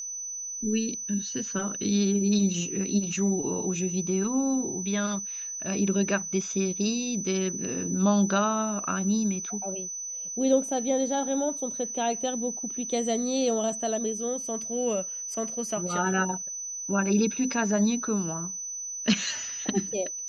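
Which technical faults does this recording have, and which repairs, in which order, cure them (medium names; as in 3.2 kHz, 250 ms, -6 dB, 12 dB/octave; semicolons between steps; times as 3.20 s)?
whine 6 kHz -33 dBFS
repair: band-stop 6 kHz, Q 30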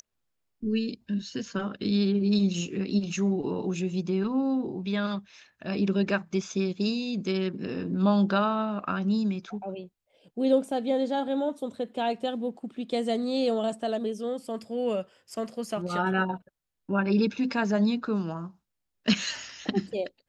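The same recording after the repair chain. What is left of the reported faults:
nothing left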